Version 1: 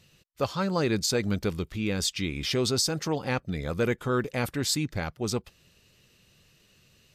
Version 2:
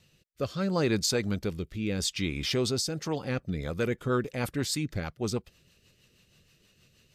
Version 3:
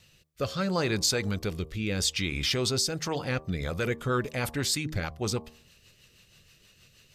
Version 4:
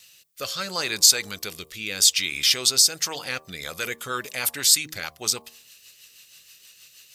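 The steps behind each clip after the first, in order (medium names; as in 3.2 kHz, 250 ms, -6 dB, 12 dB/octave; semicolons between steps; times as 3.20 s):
rotary cabinet horn 0.75 Hz, later 6.3 Hz, at 2.80 s
peaking EQ 260 Hz -6.5 dB 2.3 oct; de-hum 77.66 Hz, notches 15; in parallel at 0 dB: peak limiter -26.5 dBFS, peak gain reduction 11 dB
tilt EQ +4.5 dB/octave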